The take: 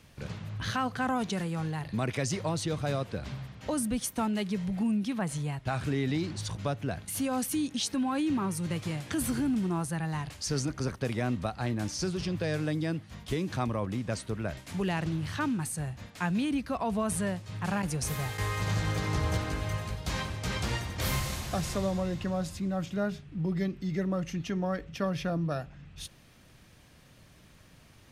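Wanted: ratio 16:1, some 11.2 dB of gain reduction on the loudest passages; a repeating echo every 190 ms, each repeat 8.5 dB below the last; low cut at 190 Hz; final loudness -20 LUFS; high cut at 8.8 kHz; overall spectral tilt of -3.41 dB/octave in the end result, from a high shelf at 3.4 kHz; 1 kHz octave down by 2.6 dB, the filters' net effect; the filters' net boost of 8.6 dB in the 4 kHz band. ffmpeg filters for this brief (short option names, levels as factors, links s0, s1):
-af "highpass=190,lowpass=8800,equalizer=f=1000:t=o:g=-4.5,highshelf=f=3400:g=6.5,equalizer=f=4000:t=o:g=6.5,acompressor=threshold=0.0282:ratio=16,aecho=1:1:190|380|570|760:0.376|0.143|0.0543|0.0206,volume=5.62"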